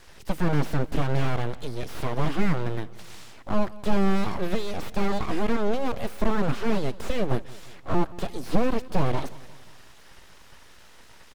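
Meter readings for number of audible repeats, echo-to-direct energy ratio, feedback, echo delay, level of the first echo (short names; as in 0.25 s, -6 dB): 3, -18.5 dB, 54%, 0.176 s, -20.0 dB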